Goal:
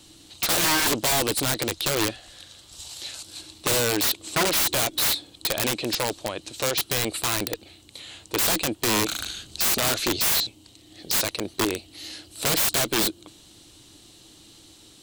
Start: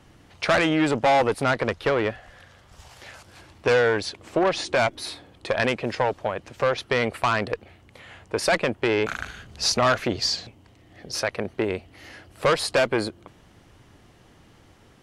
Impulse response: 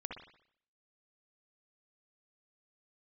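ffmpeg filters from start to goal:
-af "aexciter=amount=3.9:drive=6.2:freq=2.7k,equalizer=f=315:t=o:w=0.33:g=12,equalizer=f=4k:t=o:w=0.33:g=11,equalizer=f=8k:t=o:w=0.33:g=7,aeval=exprs='(mod(3.98*val(0)+1,2)-1)/3.98':c=same,volume=-4.5dB"

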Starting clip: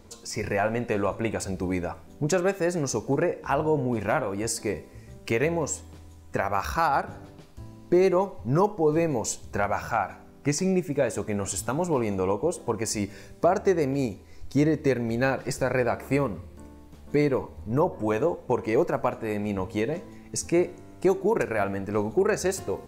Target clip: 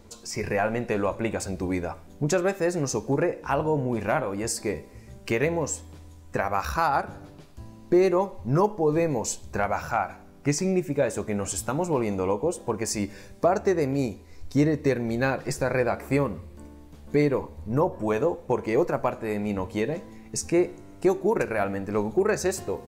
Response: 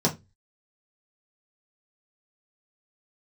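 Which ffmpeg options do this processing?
-filter_complex "[0:a]asplit=2[a][b];[b]adelay=14,volume=-14dB[c];[a][c]amix=inputs=2:normalize=0"

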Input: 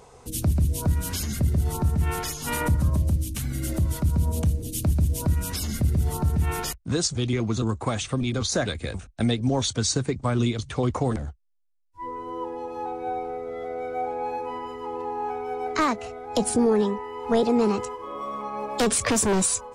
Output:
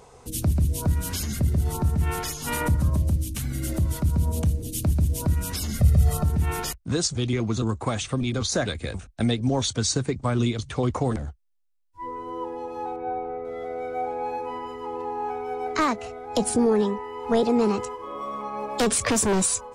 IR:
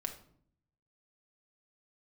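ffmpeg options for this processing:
-filter_complex "[0:a]asettb=1/sr,asplit=3[a][b][c];[a]atrim=end=5.794[d];[b]atrim=start=5.79:end=6.24,asetpts=PTS-STARTPTS,afade=t=in:d=0.004:c=qsin,afade=t=out:st=0.446:d=0.004:c=qsin,aecho=1:1:1.6:0.98,atrim=end_sample=19845[e];[c]atrim=start=6.236[f];[d][e]acrossfade=d=0.004:c1=hsin:c2=qsin[g];[g][f]acrossfade=d=0.004:c1=qsin:c2=hsin,asettb=1/sr,asplit=3[h][i][j];[h]atrim=end=12.964[k];[i]atrim=start=12.96:end=13.45,asetpts=PTS-STARTPTS,afade=t=in:d=0.004:c=qsin,afade=t=out:st=0.486:d=0.004:c=qsin,lowpass=2.2k[l];[j]atrim=start=13.446[m];[k][l]acrossfade=d=0.004:c1=hsin:c2=qsin[n];[n][m]acrossfade=d=0.004:c1=qsin:c2=hsin"

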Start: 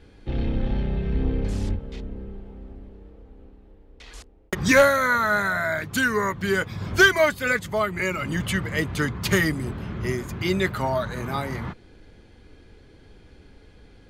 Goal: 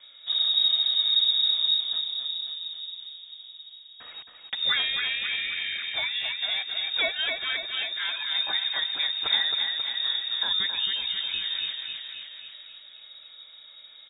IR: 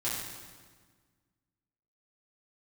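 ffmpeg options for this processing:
-filter_complex "[0:a]aecho=1:1:269|538|807|1076|1345|1614|1883:0.501|0.266|0.141|0.0746|0.0395|0.021|0.0111,acrossover=split=220|3000[a][b][c];[b]acompressor=threshold=-40dB:ratio=2[d];[a][d][c]amix=inputs=3:normalize=0,lowpass=f=3.2k:t=q:w=0.5098,lowpass=f=3.2k:t=q:w=0.6013,lowpass=f=3.2k:t=q:w=0.9,lowpass=f=3.2k:t=q:w=2.563,afreqshift=-3800"

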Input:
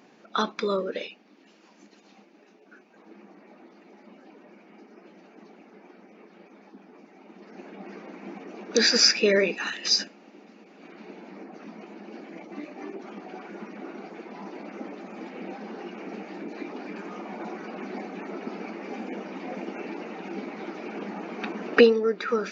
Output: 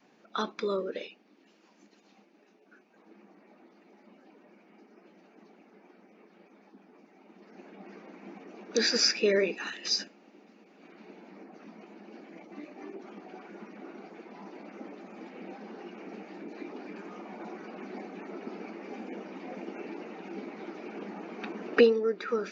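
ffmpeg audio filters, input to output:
-af "adynamicequalizer=threshold=0.0141:dfrequency=370:dqfactor=1.7:tfrequency=370:tqfactor=1.7:attack=5:release=100:ratio=0.375:range=2:mode=boostabove:tftype=bell,volume=-6.5dB"

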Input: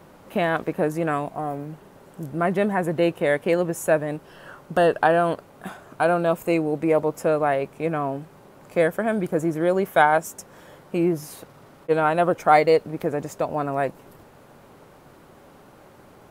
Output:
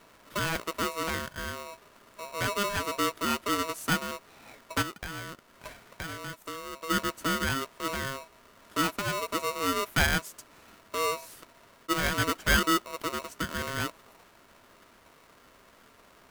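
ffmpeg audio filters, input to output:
-filter_complex "[0:a]asplit=3[a][b][c];[a]afade=t=out:st=4.81:d=0.02[d];[b]acompressor=threshold=-29dB:ratio=5,afade=t=in:st=4.81:d=0.02,afade=t=out:st=6.89:d=0.02[e];[c]afade=t=in:st=6.89:d=0.02[f];[d][e][f]amix=inputs=3:normalize=0,aeval=exprs='val(0)*sgn(sin(2*PI*810*n/s))':c=same,volume=-8dB"

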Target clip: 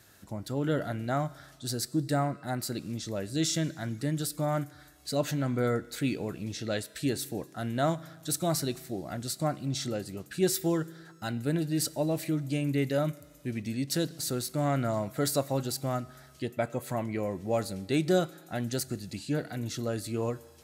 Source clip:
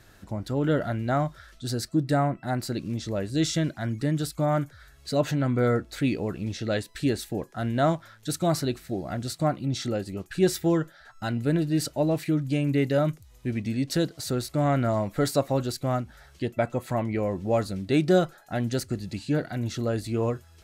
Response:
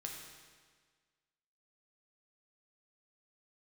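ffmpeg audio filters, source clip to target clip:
-filter_complex "[0:a]highpass=82,highshelf=f=5.8k:g=11,asplit=2[a][b];[1:a]atrim=start_sample=2205[c];[b][c]afir=irnorm=-1:irlink=0,volume=-12.5dB[d];[a][d]amix=inputs=2:normalize=0,volume=-6dB"

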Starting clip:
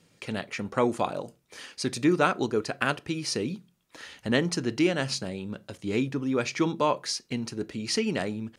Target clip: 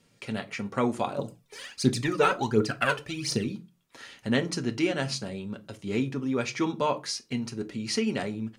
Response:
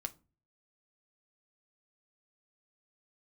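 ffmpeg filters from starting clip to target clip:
-filter_complex "[0:a]asettb=1/sr,asplit=3[a][b][c];[a]atrim=end=1.184[d];[b]atrim=start=1.18:end=3.45,asetpts=PTS-STARTPTS,afade=t=in:d=0.004:c=qsin,afade=t=out:st=2.266:d=0.004:c=qsin,aphaser=in_gain=1:out_gain=1:delay=2.4:decay=0.71:speed=1.4:type=triangular[e];[c]atrim=start=3.446[f];[d][e]acrossfade=d=0.004:c1=hsin:c2=qsin[g];[g][f]acrossfade=d=0.004:c1=qsin:c2=hsin[h];[1:a]atrim=start_sample=2205,afade=t=out:st=0.19:d=0.01,atrim=end_sample=8820[i];[h][i]afir=irnorm=-1:irlink=0"

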